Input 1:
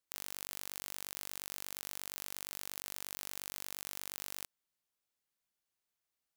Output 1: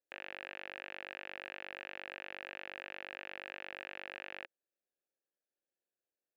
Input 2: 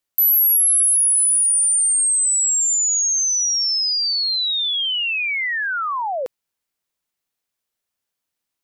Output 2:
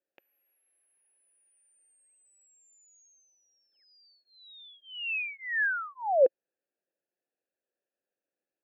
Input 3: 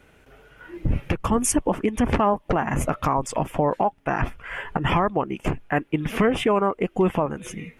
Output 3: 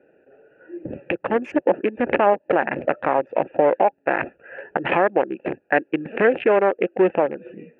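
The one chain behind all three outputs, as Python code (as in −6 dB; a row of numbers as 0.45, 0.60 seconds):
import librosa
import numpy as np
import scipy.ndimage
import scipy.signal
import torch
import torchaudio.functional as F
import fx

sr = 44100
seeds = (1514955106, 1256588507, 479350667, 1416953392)

y = fx.wiener(x, sr, points=41)
y = fx.cabinet(y, sr, low_hz=320.0, low_slope=12, high_hz=2700.0, hz=(350.0, 540.0, 790.0, 1100.0, 1700.0, 2600.0), db=(5, 9, 3, -6, 9, 9))
y = y * 10.0 ** (2.0 / 20.0)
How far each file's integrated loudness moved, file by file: −3.5, −13.5, +2.5 LU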